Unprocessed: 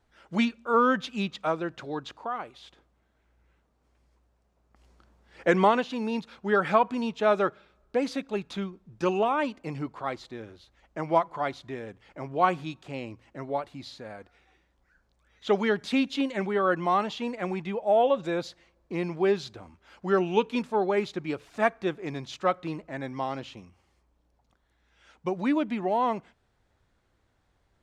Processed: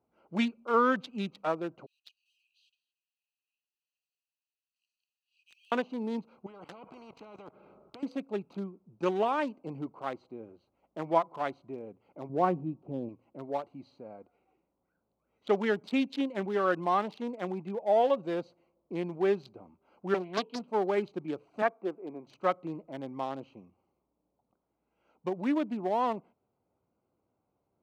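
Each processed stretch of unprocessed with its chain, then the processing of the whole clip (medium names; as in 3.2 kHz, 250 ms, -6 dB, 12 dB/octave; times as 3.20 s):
1.86–5.72 s: companding laws mixed up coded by mu + Chebyshev high-pass 2.5 kHz, order 10 + delay 228 ms -21.5 dB
6.46–8.03 s: low-pass 2.4 kHz 6 dB/octave + level held to a coarse grid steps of 17 dB + spectrum-flattening compressor 4:1
12.29–13.09 s: block-companded coder 7-bit + low-pass 1.3 kHz 6 dB/octave + tilt shelf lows +7.5 dB, about 800 Hz
20.14–20.68 s: cabinet simulation 260–4400 Hz, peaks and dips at 330 Hz -8 dB, 520 Hz -4 dB, 830 Hz -6 dB, 1.2 kHz -9 dB, 2.1 kHz -10 dB, 3.2 kHz +10 dB + loudspeaker Doppler distortion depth 0.65 ms
21.62–22.27 s: band-pass 280–2300 Hz + distance through air 180 m
whole clip: local Wiener filter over 25 samples; high-pass 170 Hz 12 dB/octave; trim -2.5 dB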